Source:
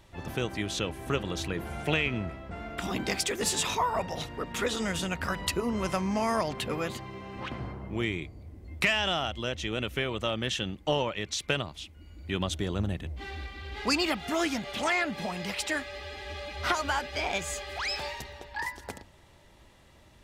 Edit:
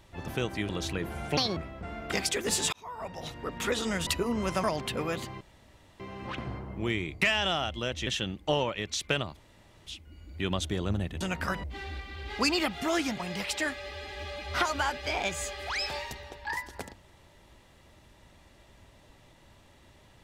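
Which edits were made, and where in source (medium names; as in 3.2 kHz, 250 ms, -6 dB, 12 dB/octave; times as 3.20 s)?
0.69–1.24 s: delete
1.92–2.25 s: speed 168%
2.81–3.07 s: delete
3.67–4.51 s: fade in
5.01–5.44 s: move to 13.10 s
6.01–6.36 s: delete
7.13 s: insert room tone 0.59 s
8.35–8.83 s: delete
9.68–10.46 s: delete
11.76 s: insert room tone 0.50 s
14.66–15.29 s: delete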